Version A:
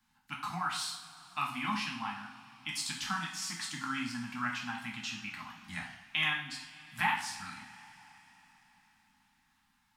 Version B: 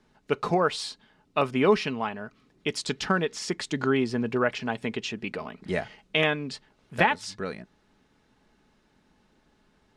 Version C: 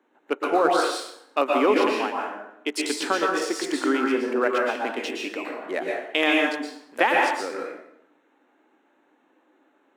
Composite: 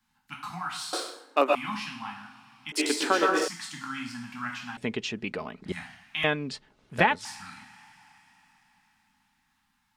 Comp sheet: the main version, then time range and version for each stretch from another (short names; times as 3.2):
A
0.93–1.55 from C
2.72–3.48 from C
4.77–5.72 from B
6.24–7.25 from B